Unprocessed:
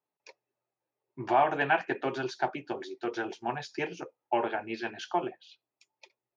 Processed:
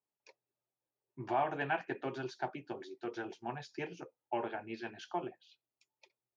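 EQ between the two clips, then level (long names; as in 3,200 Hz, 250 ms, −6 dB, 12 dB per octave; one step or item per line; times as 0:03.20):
low-shelf EQ 220 Hz +7.5 dB
−9.0 dB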